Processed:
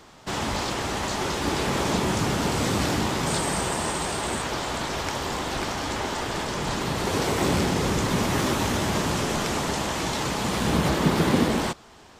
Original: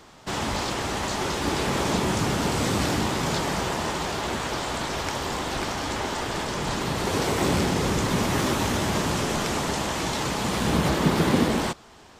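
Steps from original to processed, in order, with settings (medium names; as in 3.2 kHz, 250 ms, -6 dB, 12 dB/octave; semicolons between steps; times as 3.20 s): 3.27–4.42 s: peaking EQ 8.5 kHz +15 dB 0.22 oct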